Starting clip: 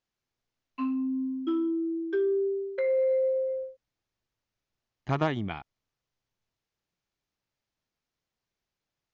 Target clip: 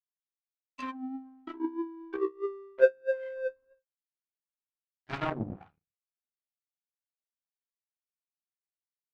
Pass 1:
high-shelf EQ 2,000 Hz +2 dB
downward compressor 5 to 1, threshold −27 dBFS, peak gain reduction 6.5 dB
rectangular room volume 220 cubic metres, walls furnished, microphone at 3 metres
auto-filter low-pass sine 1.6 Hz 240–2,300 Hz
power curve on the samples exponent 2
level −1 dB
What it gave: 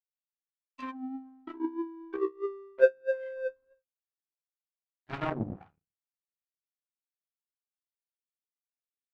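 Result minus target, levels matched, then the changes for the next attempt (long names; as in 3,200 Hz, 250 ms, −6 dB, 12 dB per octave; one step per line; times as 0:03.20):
4,000 Hz band −3.5 dB
change: high-shelf EQ 2,000 Hz +9.5 dB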